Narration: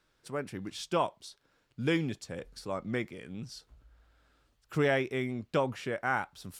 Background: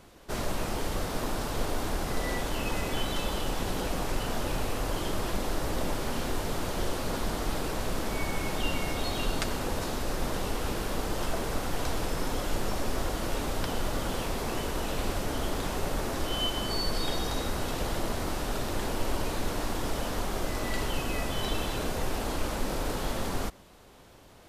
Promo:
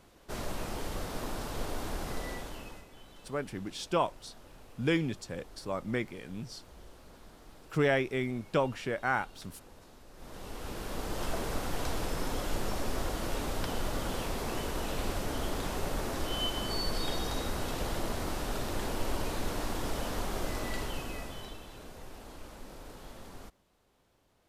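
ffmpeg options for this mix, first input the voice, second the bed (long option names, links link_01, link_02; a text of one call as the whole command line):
ffmpeg -i stem1.wav -i stem2.wav -filter_complex "[0:a]adelay=3000,volume=0.5dB[link_01];[1:a]volume=14.5dB,afade=type=out:start_time=2.09:duration=0.77:silence=0.133352,afade=type=in:start_time=10.13:duration=1.2:silence=0.1,afade=type=out:start_time=20.51:duration=1.08:silence=0.211349[link_02];[link_01][link_02]amix=inputs=2:normalize=0" out.wav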